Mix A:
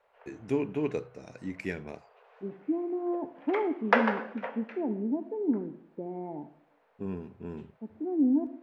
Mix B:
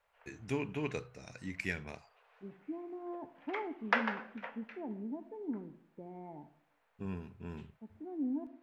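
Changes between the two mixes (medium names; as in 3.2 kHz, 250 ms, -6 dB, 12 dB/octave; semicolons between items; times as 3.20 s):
first voice +4.0 dB; background: send -9.5 dB; master: add peaking EQ 370 Hz -12.5 dB 2.6 oct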